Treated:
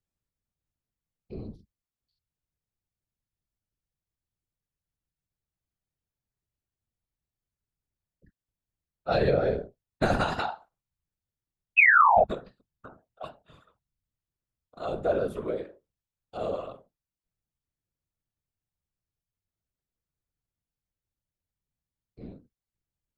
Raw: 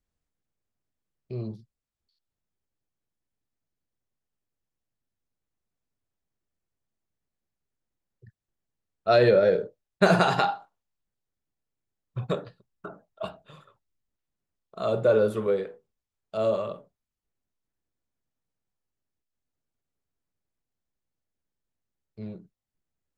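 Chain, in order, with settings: 9.08–10.31 octaver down 2 oct, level 0 dB; 11.77–12.24 painted sound fall 590–2700 Hz -12 dBFS; whisperiser; gain -6 dB

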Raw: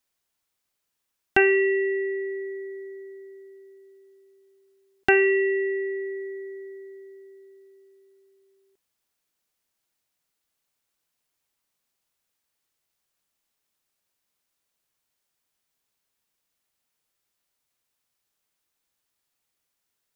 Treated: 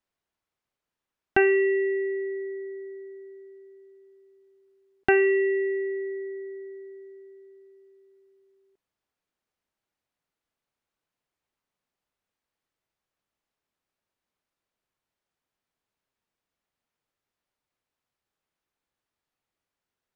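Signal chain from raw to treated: LPF 1600 Hz 6 dB/oct

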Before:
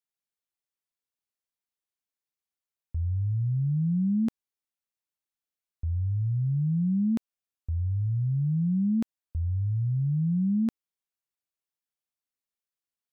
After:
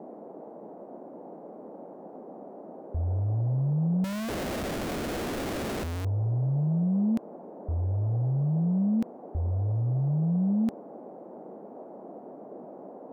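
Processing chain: band noise 190–740 Hz -44 dBFS; 4.04–6.05 Schmitt trigger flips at -47.5 dBFS

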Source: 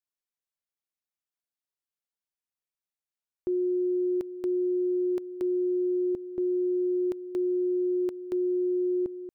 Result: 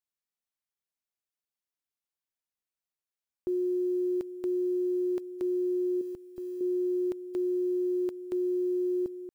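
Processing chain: block floating point 7-bit; 6.01–6.61 bell 380 Hz -8 dB 2.8 oct; gain -2 dB

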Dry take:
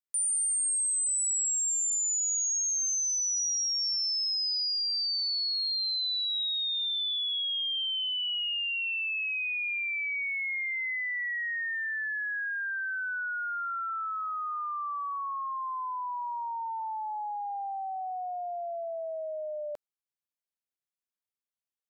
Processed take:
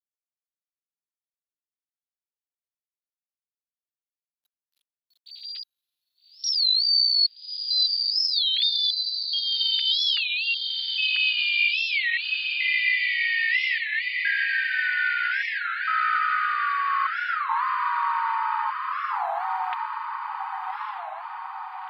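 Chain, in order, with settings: sine-wave speech; reverb removal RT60 0.54 s; HPF 830 Hz 24 dB/oct; comb 7.1 ms, depth 49%; in parallel at +1.5 dB: compressor 16:1, threshold -41 dBFS, peak gain reduction 20.5 dB; on the sum: step gate "xxxxx...xxx" 101 bpm -60 dB; pitch shift +4.5 st; bit-crush 12-bit; on a send: diffused feedback echo 1.235 s, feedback 59%, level -3 dB; on the sum: record warp 33 1/3 rpm, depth 250 cents; gain +4 dB

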